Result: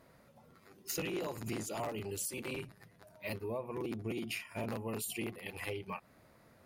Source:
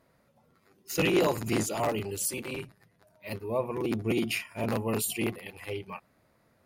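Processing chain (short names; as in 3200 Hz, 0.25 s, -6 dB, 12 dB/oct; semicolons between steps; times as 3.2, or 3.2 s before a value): compressor 6:1, threshold -41 dBFS, peak gain reduction 19 dB; gain +4 dB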